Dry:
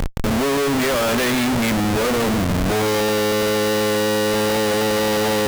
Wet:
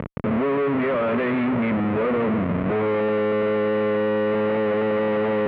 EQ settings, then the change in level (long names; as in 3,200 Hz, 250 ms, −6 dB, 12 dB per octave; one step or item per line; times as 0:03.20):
high-frequency loss of the air 170 metres
loudspeaker in its box 140–2,200 Hz, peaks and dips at 310 Hz −4 dB, 800 Hz −8 dB, 1,600 Hz −6 dB
0.0 dB